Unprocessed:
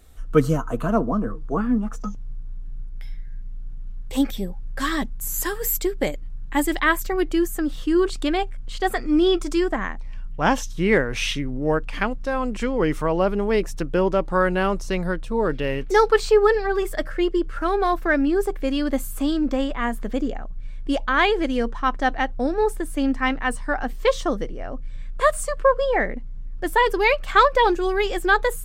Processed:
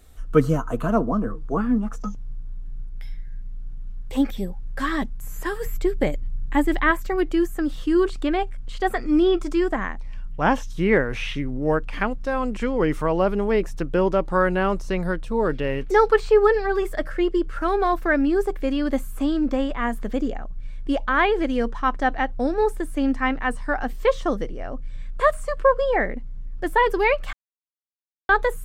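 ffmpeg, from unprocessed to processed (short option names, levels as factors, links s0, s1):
-filter_complex "[0:a]asettb=1/sr,asplit=3[s0][s1][s2];[s0]atrim=end=5.664[s3];[s1]atrim=start=5.66:end=6.91,asetpts=PTS-STARTPTS,afade=t=in:d=0.004:c=qsin,afade=t=out:st=1.246:d=0.004:c=qsin,equalizer=f=61:w=0.37:g=7.5[s4];[s2]atrim=start=6.906[s5];[s3][s4]acrossfade=d=0.004:c1=hsin:c2=qsin[s6];[s6][s5]acrossfade=d=0.004:c1=qsin:c2=hsin,asplit=3[s7][s8][s9];[s7]atrim=end=27.33,asetpts=PTS-STARTPTS,afade=t=out:st=27.326:d=0.004:c=hsin[s10];[s8]atrim=start=27.33:end=28.29,asetpts=PTS-STARTPTS,volume=0[s11];[s9]atrim=start=28.29,asetpts=PTS-STARTPTS,afade=t=in:d=0.004:c=hsin[s12];[s10][s11][s12]concat=n=3:v=0:a=1,acrossover=split=2700[s13][s14];[s14]acompressor=threshold=0.00708:ratio=4:attack=1:release=60[s15];[s13][s15]amix=inputs=2:normalize=0"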